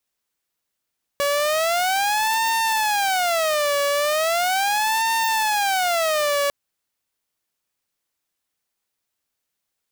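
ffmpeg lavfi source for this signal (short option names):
-f lavfi -i "aevalsrc='0.158*(2*mod((737.5*t-168.5/(2*PI*0.38)*sin(2*PI*0.38*t)),1)-1)':d=5.3:s=44100"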